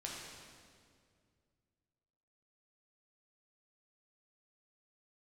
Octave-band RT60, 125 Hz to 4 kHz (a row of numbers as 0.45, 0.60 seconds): 3.0, 2.6, 2.4, 1.9, 1.8, 1.7 seconds